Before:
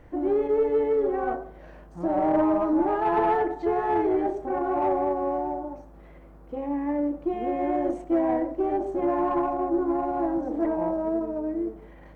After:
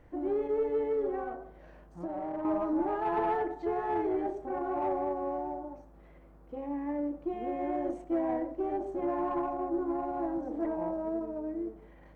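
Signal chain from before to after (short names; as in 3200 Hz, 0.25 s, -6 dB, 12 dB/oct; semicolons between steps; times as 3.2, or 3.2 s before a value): 1.21–2.45 compressor 6:1, threshold -27 dBFS, peak gain reduction 8.5 dB; gain -7 dB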